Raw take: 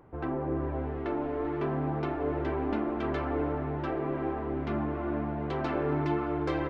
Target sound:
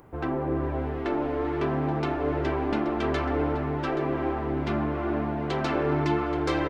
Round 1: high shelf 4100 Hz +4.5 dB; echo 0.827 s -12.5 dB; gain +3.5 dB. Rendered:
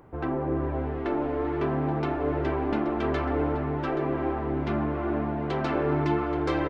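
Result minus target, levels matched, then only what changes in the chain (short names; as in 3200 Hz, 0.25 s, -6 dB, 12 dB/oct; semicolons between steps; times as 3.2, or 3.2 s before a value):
8000 Hz band -7.0 dB
change: high shelf 4100 Hz +15 dB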